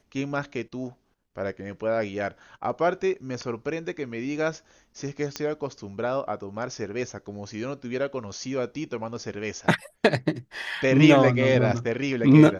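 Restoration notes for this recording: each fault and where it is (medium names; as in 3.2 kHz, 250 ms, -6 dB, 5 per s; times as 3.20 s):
5.36 s: pop -14 dBFS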